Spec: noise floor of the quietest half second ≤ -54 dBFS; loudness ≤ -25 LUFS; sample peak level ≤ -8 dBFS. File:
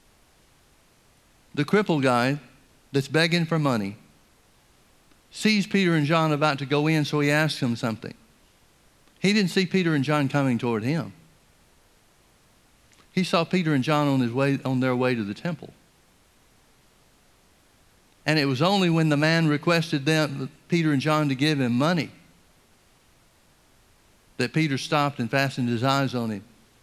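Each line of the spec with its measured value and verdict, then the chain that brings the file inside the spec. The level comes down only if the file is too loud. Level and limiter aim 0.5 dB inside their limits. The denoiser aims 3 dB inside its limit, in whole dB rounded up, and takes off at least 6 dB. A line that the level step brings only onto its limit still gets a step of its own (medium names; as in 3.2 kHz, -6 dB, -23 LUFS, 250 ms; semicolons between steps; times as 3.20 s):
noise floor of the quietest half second -60 dBFS: pass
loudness -23.5 LUFS: fail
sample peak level -5.0 dBFS: fail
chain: trim -2 dB; peak limiter -8.5 dBFS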